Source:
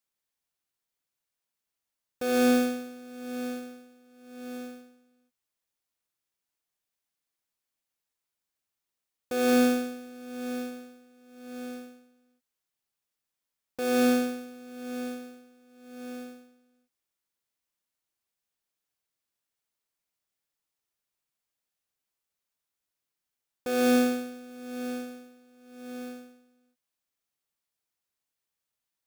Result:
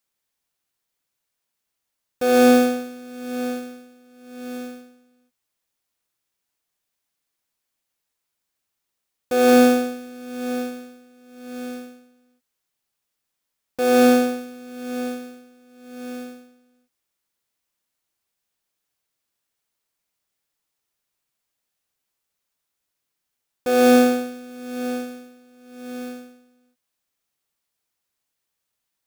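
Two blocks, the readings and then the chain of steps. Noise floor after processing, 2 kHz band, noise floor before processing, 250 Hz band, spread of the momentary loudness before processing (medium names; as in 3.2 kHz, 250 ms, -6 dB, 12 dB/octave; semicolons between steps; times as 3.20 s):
-80 dBFS, +7.5 dB, under -85 dBFS, +7.0 dB, 21 LU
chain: dynamic bell 690 Hz, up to +5 dB, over -39 dBFS, Q 0.97; trim +6.5 dB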